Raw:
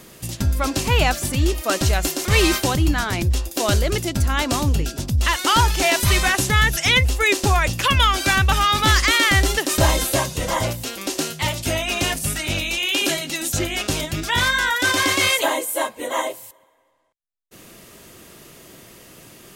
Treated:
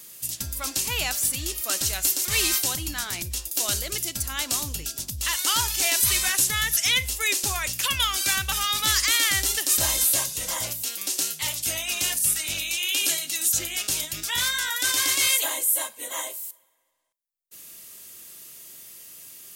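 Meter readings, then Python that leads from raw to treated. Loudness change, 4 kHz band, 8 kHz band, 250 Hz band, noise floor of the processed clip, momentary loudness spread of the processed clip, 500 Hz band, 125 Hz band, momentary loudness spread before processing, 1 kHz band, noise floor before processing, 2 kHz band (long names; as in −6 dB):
−3.5 dB, −3.0 dB, +3.0 dB, −16.5 dB, −54 dBFS, 15 LU, −15.0 dB, −17.0 dB, 8 LU, −12.0 dB, −54 dBFS, −8.0 dB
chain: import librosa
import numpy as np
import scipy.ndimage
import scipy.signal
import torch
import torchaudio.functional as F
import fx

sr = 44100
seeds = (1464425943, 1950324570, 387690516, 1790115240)

y = scipy.signal.lfilter([1.0, -0.9], [1.0], x)
y = fx.rev_schroeder(y, sr, rt60_s=0.34, comb_ms=30, drr_db=19.5)
y = F.gain(torch.from_numpy(y), 3.0).numpy()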